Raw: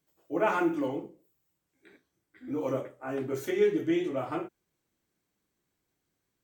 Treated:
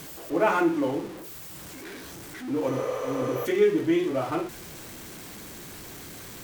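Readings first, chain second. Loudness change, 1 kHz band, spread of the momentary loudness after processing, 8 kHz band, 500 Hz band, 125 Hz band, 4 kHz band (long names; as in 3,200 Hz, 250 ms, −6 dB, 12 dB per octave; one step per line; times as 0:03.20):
+4.0 dB, +5.0 dB, 18 LU, +12.5 dB, +4.5 dB, +5.5 dB, +8.0 dB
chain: converter with a step at zero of −39 dBFS
healed spectral selection 0:02.75–0:03.43, 390–12,000 Hz before
level +3.5 dB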